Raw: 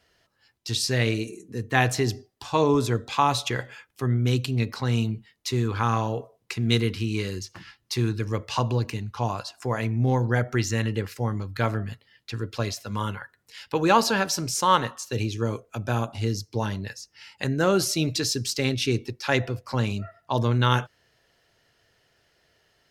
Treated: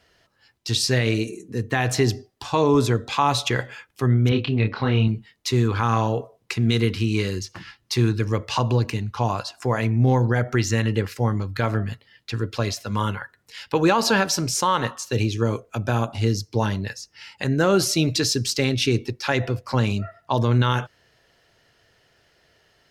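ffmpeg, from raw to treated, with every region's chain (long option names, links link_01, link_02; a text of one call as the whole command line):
ffmpeg -i in.wav -filter_complex "[0:a]asettb=1/sr,asplit=3[link_01][link_02][link_03];[link_01]atrim=end=4.294[link_04];[link_02]atrim=start=4.29:end=5.08,asetpts=PTS-STARTPTS,afade=type=in:duration=0.004:curve=qsin,afade=type=out:start_time=0.786:duration=0.004:curve=qsin,lowpass=frequency=3500:width=0.5412,lowpass=frequency=3500:width=1.3066,asplit=2[link_05][link_06];[link_06]adelay=28,volume=-4.5dB[link_07];[link_05][link_07]amix=inputs=2:normalize=0,atrim=end_sample=34839[link_08];[link_03]atrim=start=5.076[link_09];[link_04][link_08]acrossfade=duration=0.004:curve1=hsin:curve2=qsin[link_10];[link_10][link_09]acrossfade=duration=0.004:curve1=qsin:curve2=hsin,highshelf=frequency=7700:gain=-4.5,alimiter=limit=-13.5dB:level=0:latency=1:release=97,volume=5dB" out.wav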